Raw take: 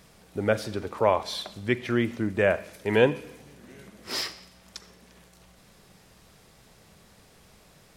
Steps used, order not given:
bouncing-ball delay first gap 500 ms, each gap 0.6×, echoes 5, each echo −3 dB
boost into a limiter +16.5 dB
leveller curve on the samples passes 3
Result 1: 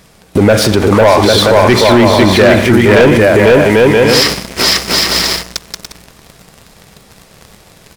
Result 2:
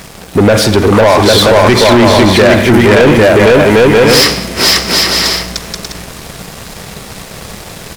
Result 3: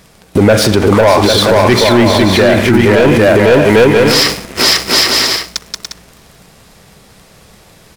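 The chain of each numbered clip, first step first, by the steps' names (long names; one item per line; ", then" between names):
bouncing-ball delay, then leveller curve on the samples, then boost into a limiter
bouncing-ball delay, then boost into a limiter, then leveller curve on the samples
leveller curve on the samples, then bouncing-ball delay, then boost into a limiter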